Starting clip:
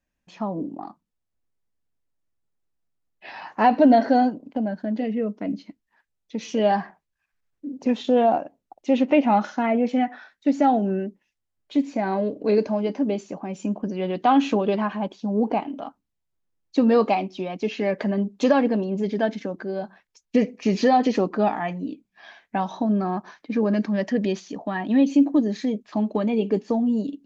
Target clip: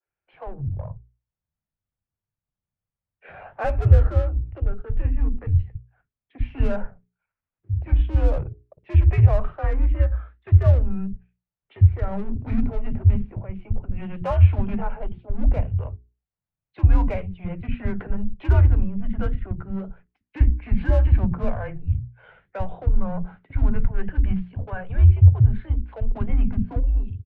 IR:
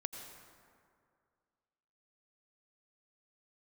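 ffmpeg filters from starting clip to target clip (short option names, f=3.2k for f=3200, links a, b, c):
-filter_complex "[0:a]highpass=f=250:t=q:w=0.5412,highpass=f=250:t=q:w=1.307,lowpass=f=3k:t=q:w=0.5176,lowpass=f=3k:t=q:w=0.7071,lowpass=f=3k:t=q:w=1.932,afreqshift=-190,acrossover=split=160|630|1300[a][b][c][d];[a]dynaudnorm=f=120:g=11:m=15dB[e];[b]aeval=exprs='(tanh(63.1*val(0)+0.55)-tanh(0.55))/63.1':c=same[f];[d]flanger=delay=7.5:depth=8:regen=-62:speed=1.9:shape=triangular[g];[e][f][c][g]amix=inputs=4:normalize=0,bandreject=f=60:t=h:w=6,bandreject=f=120:t=h:w=6,bandreject=f=180:t=h:w=6,bandreject=f=240:t=h:w=6,bandreject=f=300:t=h:w=6,bandreject=f=360:t=h:w=6,bandreject=f=420:t=h:w=6,acrossover=split=300[h][i];[h]adelay=50[j];[j][i]amix=inputs=2:normalize=0,adynamicequalizer=threshold=0.00562:dfrequency=2000:dqfactor=0.7:tfrequency=2000:tqfactor=0.7:attack=5:release=100:ratio=0.375:range=2:mode=cutabove:tftype=highshelf,volume=-2dB"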